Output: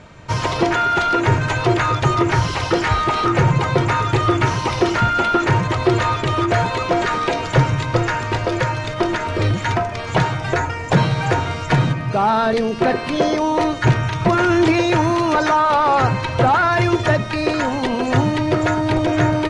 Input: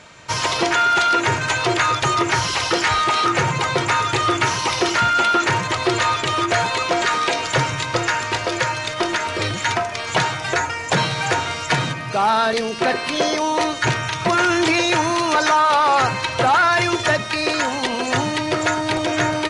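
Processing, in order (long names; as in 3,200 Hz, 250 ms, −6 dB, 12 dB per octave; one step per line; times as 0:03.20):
spectral tilt −3 dB per octave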